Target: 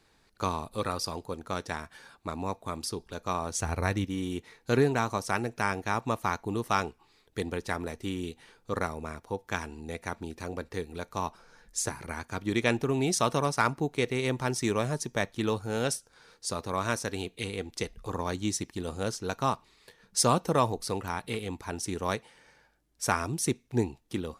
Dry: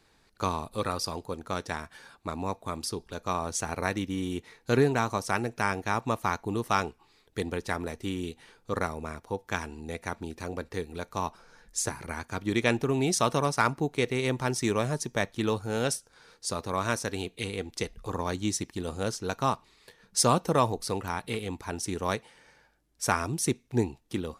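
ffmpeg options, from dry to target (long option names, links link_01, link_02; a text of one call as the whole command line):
ffmpeg -i in.wav -filter_complex "[0:a]asettb=1/sr,asplit=3[link_01][link_02][link_03];[link_01]atrim=end=3.564[link_04];[link_02]atrim=start=3.56:end=4.05,asetpts=PTS-STARTPTS,afade=type=in:duration=0.004:curve=qsin,afade=type=out:start_time=0.486:duration=0.004:curve=qsin,equalizer=frequency=71:width=0.94:gain=11.5[link_05];[link_03]atrim=start=4.046[link_06];[link_04][link_05]acrossfade=duration=0.004:curve1=hsin:curve2=qsin[link_07];[link_07][link_06]acrossfade=duration=0.004:curve1=qsin:curve2=hsin,volume=-1dB" out.wav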